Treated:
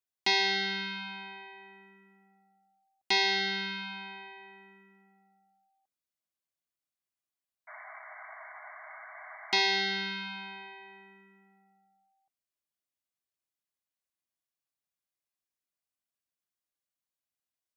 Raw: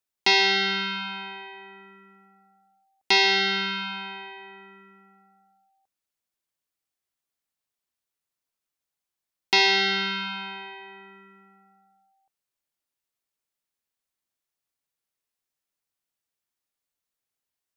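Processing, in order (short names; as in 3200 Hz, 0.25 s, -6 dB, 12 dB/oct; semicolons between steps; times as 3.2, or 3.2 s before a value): painted sound noise, 7.67–9.6, 600–2300 Hz -40 dBFS; notch comb 450 Hz; gain -6 dB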